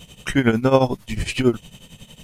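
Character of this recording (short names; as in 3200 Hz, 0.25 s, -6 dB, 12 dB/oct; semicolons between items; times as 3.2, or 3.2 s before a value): tremolo triangle 11 Hz, depth 85%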